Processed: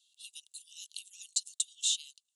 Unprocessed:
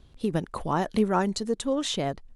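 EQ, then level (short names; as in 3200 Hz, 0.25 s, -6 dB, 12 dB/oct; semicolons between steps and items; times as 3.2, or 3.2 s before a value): rippled Chebyshev high-pass 2700 Hz, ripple 6 dB; bell 7100 Hz +10.5 dB 0.72 oct; 0.0 dB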